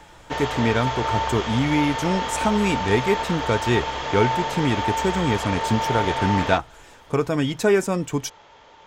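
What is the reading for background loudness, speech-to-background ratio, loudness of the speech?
−26.0 LKFS, 2.5 dB, −23.5 LKFS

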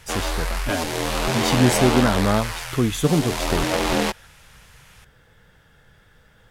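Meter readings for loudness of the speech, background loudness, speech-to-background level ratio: −23.0 LKFS, −24.0 LKFS, 1.0 dB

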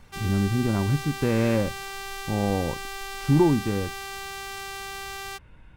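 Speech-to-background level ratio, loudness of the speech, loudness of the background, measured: 10.0 dB, −25.0 LKFS, −35.0 LKFS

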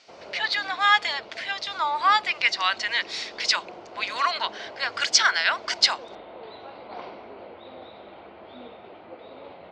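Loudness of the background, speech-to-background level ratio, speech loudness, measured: −43.0 LKFS, 19.5 dB, −23.5 LKFS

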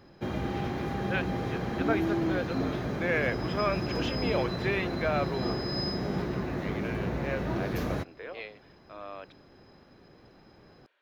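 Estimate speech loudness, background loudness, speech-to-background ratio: −35.0 LKFS, −32.0 LKFS, −3.0 dB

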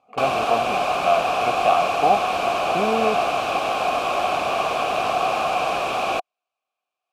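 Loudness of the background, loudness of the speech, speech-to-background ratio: −22.0 LKFS, −24.5 LKFS, −2.5 dB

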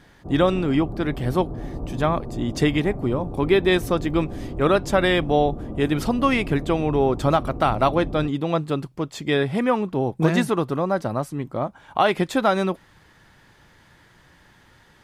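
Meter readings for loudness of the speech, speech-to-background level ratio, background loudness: −22.5 LKFS, 11.0 dB, −33.5 LKFS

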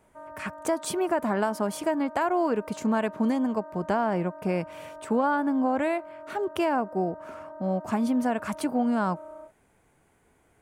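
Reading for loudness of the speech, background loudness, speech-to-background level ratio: −27.5 LKFS, −43.5 LKFS, 16.0 dB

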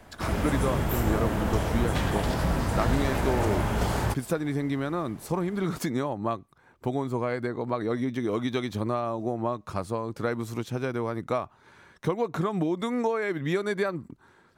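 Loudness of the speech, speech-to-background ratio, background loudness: −30.5 LKFS, −2.5 dB, −28.0 LKFS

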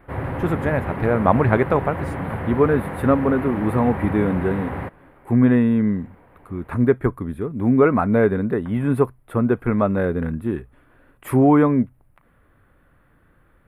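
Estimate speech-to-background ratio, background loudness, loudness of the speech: 8.5 dB, −29.0 LKFS, −20.5 LKFS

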